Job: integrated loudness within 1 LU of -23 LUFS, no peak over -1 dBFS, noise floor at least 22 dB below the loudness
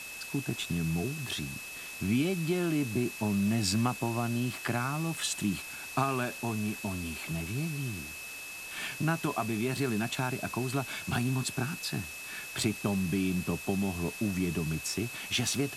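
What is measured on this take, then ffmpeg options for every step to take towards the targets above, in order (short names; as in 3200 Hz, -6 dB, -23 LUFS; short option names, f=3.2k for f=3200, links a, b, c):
steady tone 2600 Hz; tone level -42 dBFS; noise floor -43 dBFS; noise floor target -54 dBFS; loudness -32.0 LUFS; peak -14.5 dBFS; loudness target -23.0 LUFS
-> -af "bandreject=f=2.6k:w=30"
-af "afftdn=nr=11:nf=-43"
-af "volume=9dB"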